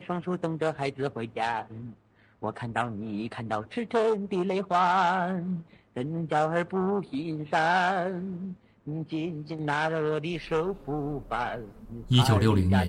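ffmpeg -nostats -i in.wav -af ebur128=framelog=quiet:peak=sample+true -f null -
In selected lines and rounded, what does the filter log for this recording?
Integrated loudness:
  I:         -28.4 LUFS
  Threshold: -38.8 LUFS
Loudness range:
  LRA:         5.0 LU
  Threshold: -49.1 LUFS
  LRA low:   -32.4 LUFS
  LRA high:  -27.3 LUFS
Sample peak:
  Peak:       -9.2 dBFS
True peak:
  Peak:       -9.2 dBFS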